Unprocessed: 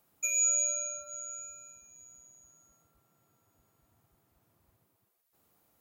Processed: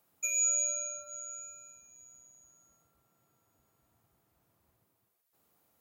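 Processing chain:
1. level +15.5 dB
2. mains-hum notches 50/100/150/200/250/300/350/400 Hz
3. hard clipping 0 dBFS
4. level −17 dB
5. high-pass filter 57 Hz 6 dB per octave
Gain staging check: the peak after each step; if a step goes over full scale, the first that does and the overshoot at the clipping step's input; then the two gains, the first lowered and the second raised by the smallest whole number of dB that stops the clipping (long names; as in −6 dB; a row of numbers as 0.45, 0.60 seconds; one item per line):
−4.5, −4.5, −4.5, −21.5, −21.5 dBFS
no step passes full scale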